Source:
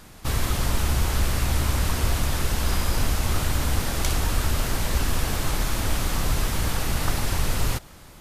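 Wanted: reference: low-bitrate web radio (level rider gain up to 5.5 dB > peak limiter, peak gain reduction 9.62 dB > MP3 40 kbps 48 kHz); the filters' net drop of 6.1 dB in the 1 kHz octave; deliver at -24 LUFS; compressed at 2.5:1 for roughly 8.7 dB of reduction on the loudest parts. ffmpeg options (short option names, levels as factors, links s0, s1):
-af "equalizer=f=1000:t=o:g=-8,acompressor=threshold=0.0282:ratio=2.5,dynaudnorm=m=1.88,alimiter=level_in=1.78:limit=0.0631:level=0:latency=1,volume=0.562,volume=6.68" -ar 48000 -c:a libmp3lame -b:a 40k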